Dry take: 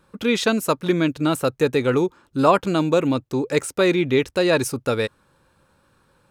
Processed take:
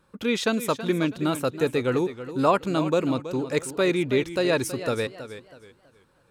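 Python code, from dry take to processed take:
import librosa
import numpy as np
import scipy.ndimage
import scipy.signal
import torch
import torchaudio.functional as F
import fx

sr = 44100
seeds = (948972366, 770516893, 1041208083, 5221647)

y = fx.echo_warbled(x, sr, ms=323, feedback_pct=31, rate_hz=2.8, cents=90, wet_db=-12.5)
y = F.gain(torch.from_numpy(y), -4.5).numpy()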